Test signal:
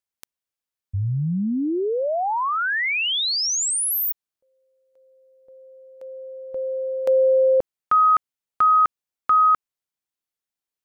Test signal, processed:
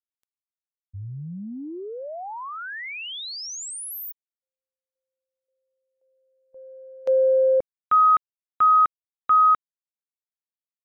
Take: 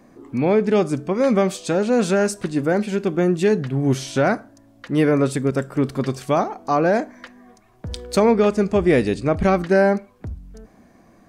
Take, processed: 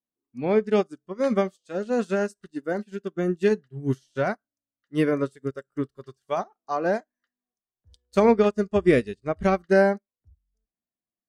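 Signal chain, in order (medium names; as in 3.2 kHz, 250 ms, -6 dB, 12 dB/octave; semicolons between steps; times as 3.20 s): spectral noise reduction 11 dB; upward expansion 2.5:1, over -37 dBFS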